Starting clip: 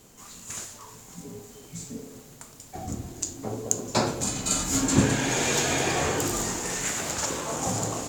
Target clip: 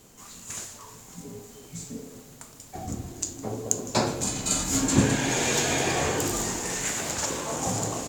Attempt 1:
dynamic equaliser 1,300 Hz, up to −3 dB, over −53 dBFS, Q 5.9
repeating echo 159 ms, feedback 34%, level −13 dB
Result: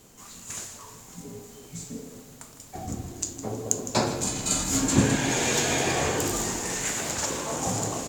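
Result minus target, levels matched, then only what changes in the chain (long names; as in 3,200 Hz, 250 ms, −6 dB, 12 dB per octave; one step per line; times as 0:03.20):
echo-to-direct +6.5 dB
change: repeating echo 159 ms, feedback 34%, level −19.5 dB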